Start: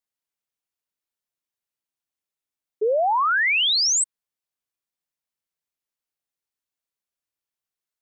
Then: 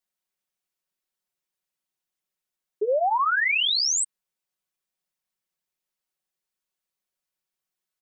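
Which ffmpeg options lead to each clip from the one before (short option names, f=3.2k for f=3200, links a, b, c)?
-af "aecho=1:1:5.4:0.83,alimiter=limit=-18dB:level=0:latency=1:release=22"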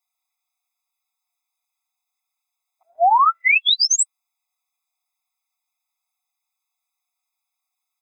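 -af "afftfilt=real='re*eq(mod(floor(b*sr/1024/670),2),1)':imag='im*eq(mod(floor(b*sr/1024/670),2),1)':win_size=1024:overlap=0.75,volume=8.5dB"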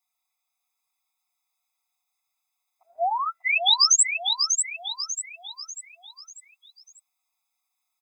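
-filter_complex "[0:a]acrossover=split=500|3000[a][b][c];[b]acompressor=threshold=-40dB:ratio=2[d];[a][d][c]amix=inputs=3:normalize=0,asplit=2[e][f];[f]aecho=0:1:593|1186|1779|2372|2965:0.531|0.228|0.0982|0.0422|0.0181[g];[e][g]amix=inputs=2:normalize=0"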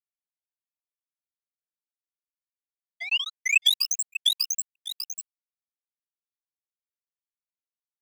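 -af "acompressor=threshold=-25dB:ratio=12,acrusher=bits=3:mix=0:aa=0.5,highpass=f=2.8k:t=q:w=10"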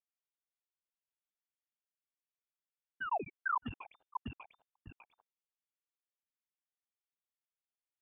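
-af "asoftclip=type=tanh:threshold=-24dB,lowpass=f=3.1k:t=q:w=0.5098,lowpass=f=3.1k:t=q:w=0.6013,lowpass=f=3.1k:t=q:w=0.9,lowpass=f=3.1k:t=q:w=2.563,afreqshift=-3600,volume=-4dB"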